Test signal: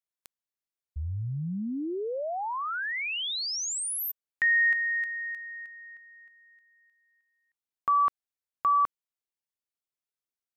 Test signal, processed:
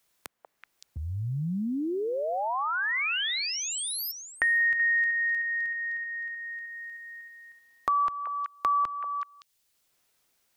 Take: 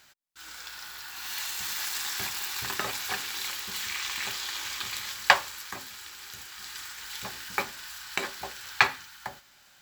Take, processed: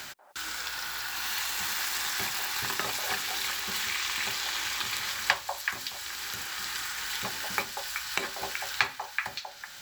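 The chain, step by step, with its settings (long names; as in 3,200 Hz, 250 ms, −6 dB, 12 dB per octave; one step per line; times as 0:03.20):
echo through a band-pass that steps 189 ms, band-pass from 680 Hz, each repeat 1.4 octaves, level −4.5 dB
multiband upward and downward compressor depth 70%
level +1 dB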